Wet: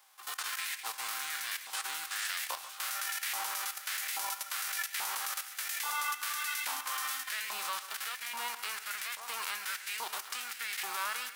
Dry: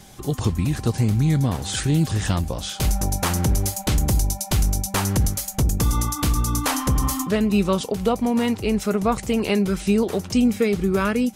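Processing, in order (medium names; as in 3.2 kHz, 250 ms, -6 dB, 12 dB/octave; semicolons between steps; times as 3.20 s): formants flattened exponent 0.3; peaking EQ 6.7 kHz -2.5 dB 0.61 oct; level held to a coarse grid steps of 14 dB; on a send: two-band feedback delay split 2.2 kHz, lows 140 ms, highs 201 ms, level -12 dB; on the sum: LFO high-pass saw up 1.2 Hz 900–2000 Hz; trim -8.5 dB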